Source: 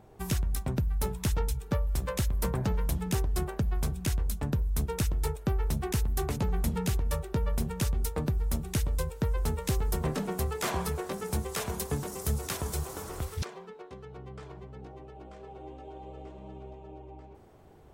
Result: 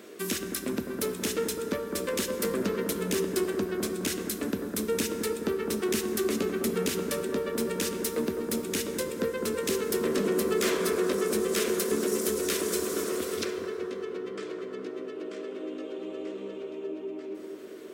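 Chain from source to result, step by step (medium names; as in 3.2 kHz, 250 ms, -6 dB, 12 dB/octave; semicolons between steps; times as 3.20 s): high-pass 170 Hz 24 dB/octave; treble shelf 7.3 kHz -4.5 dB; in parallel at +2 dB: peak limiter -27.5 dBFS, peak gain reduction 8 dB; on the sum: static phaser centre 340 Hz, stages 4; saturation -25 dBFS, distortion -17 dB; on a send: bucket-brigade echo 207 ms, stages 2048, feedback 58%, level -6 dB; on the sum: plate-style reverb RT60 2.9 s, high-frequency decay 0.5×, DRR 8 dB; tape noise reduction on one side only encoder only; trim +4 dB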